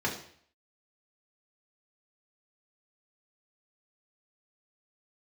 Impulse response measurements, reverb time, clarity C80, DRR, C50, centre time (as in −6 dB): 0.55 s, 11.5 dB, −3.5 dB, 8.0 dB, 25 ms